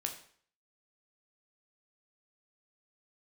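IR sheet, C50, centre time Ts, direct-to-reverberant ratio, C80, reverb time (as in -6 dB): 9.5 dB, 16 ms, 3.0 dB, 12.5 dB, 0.55 s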